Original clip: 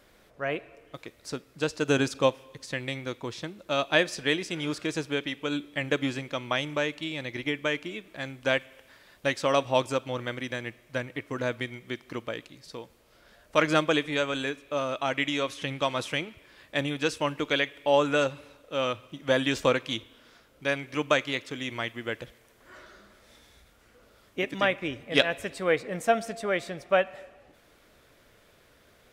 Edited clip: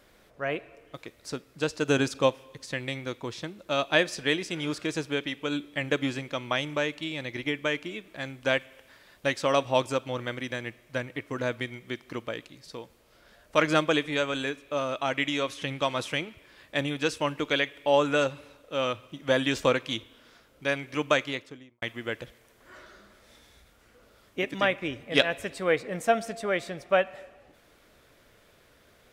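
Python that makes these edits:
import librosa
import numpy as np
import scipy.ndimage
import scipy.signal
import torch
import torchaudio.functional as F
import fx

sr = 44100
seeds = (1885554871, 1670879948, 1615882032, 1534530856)

y = fx.studio_fade_out(x, sr, start_s=21.19, length_s=0.63)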